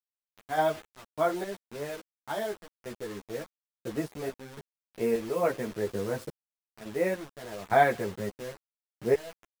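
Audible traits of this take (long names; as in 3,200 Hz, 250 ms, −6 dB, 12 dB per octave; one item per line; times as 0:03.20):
sample-and-hold tremolo, depth 95%
a quantiser's noise floor 8 bits, dither none
a shimmering, thickened sound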